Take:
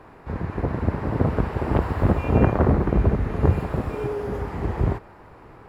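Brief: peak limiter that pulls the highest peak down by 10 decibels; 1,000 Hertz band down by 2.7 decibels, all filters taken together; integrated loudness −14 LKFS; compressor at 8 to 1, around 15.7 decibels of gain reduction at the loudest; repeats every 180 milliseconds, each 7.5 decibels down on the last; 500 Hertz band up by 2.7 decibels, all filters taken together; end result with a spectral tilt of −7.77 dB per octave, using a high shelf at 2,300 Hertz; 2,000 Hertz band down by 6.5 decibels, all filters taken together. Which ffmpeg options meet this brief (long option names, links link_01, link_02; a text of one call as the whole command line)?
ffmpeg -i in.wav -af "equalizer=frequency=500:width_type=o:gain=4.5,equalizer=frequency=1000:width_type=o:gain=-4,equalizer=frequency=2000:width_type=o:gain=-9,highshelf=frequency=2300:gain=3,acompressor=threshold=-29dB:ratio=8,alimiter=level_in=3dB:limit=-24dB:level=0:latency=1,volume=-3dB,aecho=1:1:180|360|540|720|900:0.422|0.177|0.0744|0.0312|0.0131,volume=23dB" out.wav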